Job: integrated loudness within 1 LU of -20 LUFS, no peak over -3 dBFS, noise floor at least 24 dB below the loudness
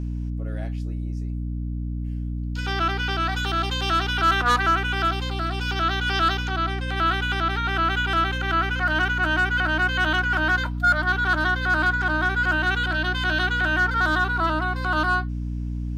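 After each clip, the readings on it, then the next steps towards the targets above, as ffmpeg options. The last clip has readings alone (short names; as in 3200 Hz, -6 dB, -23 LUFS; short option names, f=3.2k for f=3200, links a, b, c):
hum 60 Hz; harmonics up to 300 Hz; hum level -25 dBFS; loudness -23.0 LUFS; peak -11.0 dBFS; loudness target -20.0 LUFS
-> -af "bandreject=f=60:t=h:w=6,bandreject=f=120:t=h:w=6,bandreject=f=180:t=h:w=6,bandreject=f=240:t=h:w=6,bandreject=f=300:t=h:w=6"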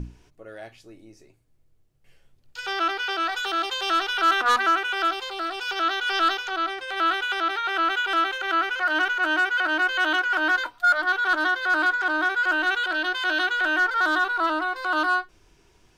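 hum none; loudness -23.0 LUFS; peak -13.0 dBFS; loudness target -20.0 LUFS
-> -af "volume=3dB"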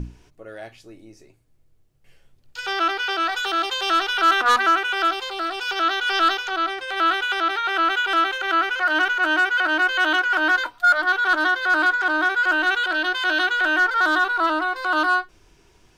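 loudness -20.0 LUFS; peak -10.0 dBFS; noise floor -57 dBFS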